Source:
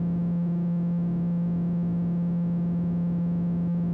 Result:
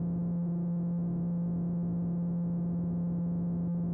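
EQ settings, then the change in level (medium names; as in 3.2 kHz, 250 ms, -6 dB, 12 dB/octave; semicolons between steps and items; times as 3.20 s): low-pass 1.2 kHz 12 dB/octave; distance through air 98 m; peaking EQ 200 Hz -8 dB 0.23 oct; -4.0 dB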